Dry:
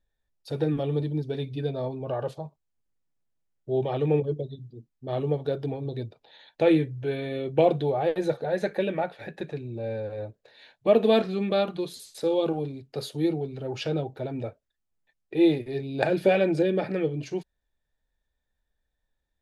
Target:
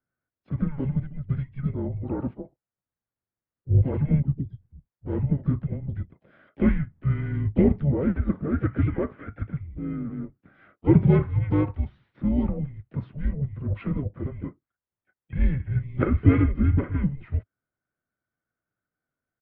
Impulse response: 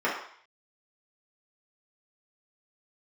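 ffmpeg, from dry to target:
-filter_complex "[0:a]equalizer=f=390:w=4.2:g=10.5,highpass=f=370:t=q:w=0.5412,highpass=f=370:t=q:w=1.307,lowpass=f=2.3k:t=q:w=0.5176,lowpass=f=2.3k:t=q:w=0.7071,lowpass=f=2.3k:t=q:w=1.932,afreqshift=-290,asplit=4[a][b][c][d];[b]asetrate=22050,aresample=44100,atempo=2,volume=-15dB[e];[c]asetrate=52444,aresample=44100,atempo=0.840896,volume=-13dB[f];[d]asetrate=66075,aresample=44100,atempo=0.66742,volume=-18dB[g];[a][e][f][g]amix=inputs=4:normalize=0"

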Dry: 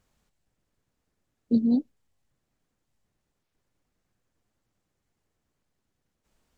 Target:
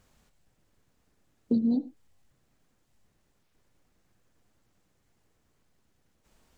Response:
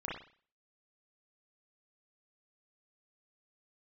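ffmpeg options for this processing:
-filter_complex "[0:a]acompressor=threshold=-31dB:ratio=4,asplit=2[a][b];[1:a]atrim=start_sample=2205,atrim=end_sample=6174[c];[b][c]afir=irnorm=-1:irlink=0,volume=-12.5dB[d];[a][d]amix=inputs=2:normalize=0,volume=5.5dB"

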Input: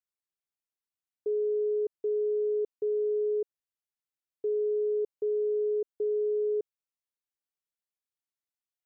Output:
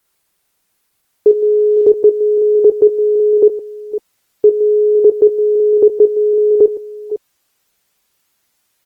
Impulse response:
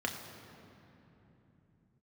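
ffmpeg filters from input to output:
-af "aecho=1:1:51|56|70|164|508|552:0.596|0.133|0.178|0.126|0.126|0.15,alimiter=level_in=29dB:limit=-1dB:release=50:level=0:latency=1,volume=-1dB" -ar 48000 -c:a libopus -b:a 20k

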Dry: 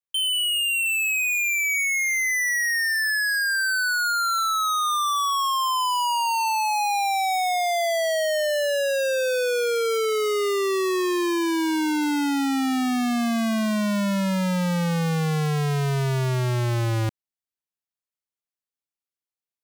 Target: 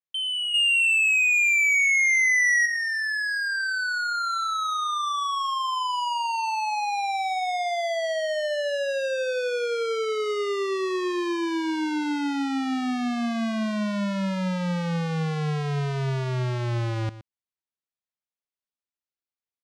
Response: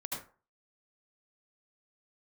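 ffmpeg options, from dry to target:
-filter_complex "[0:a]lowpass=5.2k,asettb=1/sr,asplit=3[a][b][c];[a]atrim=end=0.544[d];[b]atrim=start=0.54:end=2.66,asetpts=PTS-STARTPTS,afade=t=in:d=0.004:c=qsin,afade=t=out:st=2.116:d=0.004:c=qsin,acontrast=80[e];[c]atrim=start=2.656[f];[d][e]acrossfade=d=0.004:c1=hsin:c2=qsin[g];[g][f]acrossfade=d=0.004:c1=qsin:c2=hsin,aecho=1:1:118:0.178,volume=-3.5dB"

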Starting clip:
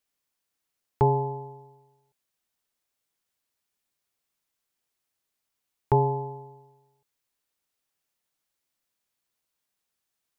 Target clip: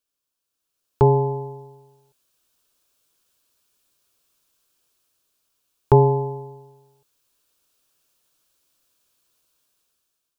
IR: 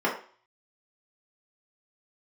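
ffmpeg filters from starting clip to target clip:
-af "equalizer=f=100:t=o:w=0.33:g=-5,equalizer=f=200:t=o:w=0.33:g=-8,equalizer=f=800:t=o:w=0.33:g=-8,equalizer=f=2k:t=o:w=0.33:g=-12,dynaudnorm=f=350:g=5:m=13.5dB"

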